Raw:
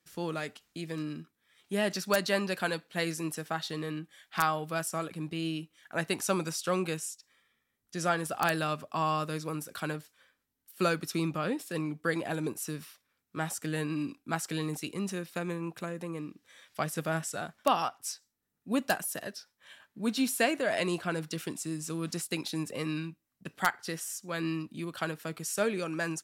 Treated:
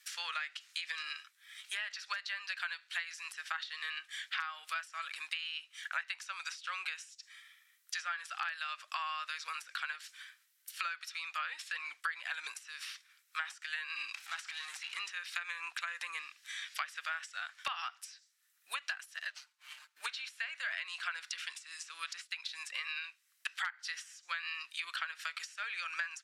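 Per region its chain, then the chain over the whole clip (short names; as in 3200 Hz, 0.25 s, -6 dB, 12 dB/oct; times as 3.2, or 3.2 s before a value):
14.14–14.97 compressor 3:1, threshold -52 dBFS + power-law curve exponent 0.5
19.3–20.06 median filter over 25 samples + comb 6.6 ms, depth 97%
whole clip: HPF 1500 Hz 24 dB/oct; compressor 12:1, threshold -48 dBFS; treble ducked by the level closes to 2600 Hz, closed at -47 dBFS; gain +14.5 dB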